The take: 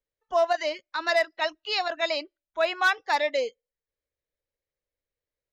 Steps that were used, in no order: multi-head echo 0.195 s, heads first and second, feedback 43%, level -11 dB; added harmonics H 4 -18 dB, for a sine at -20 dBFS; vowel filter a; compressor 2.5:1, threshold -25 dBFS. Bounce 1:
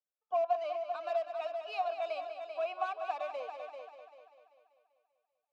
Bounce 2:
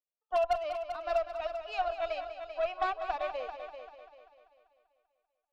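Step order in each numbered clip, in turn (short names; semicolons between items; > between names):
added harmonics > multi-head echo > compressor > vowel filter; vowel filter > added harmonics > compressor > multi-head echo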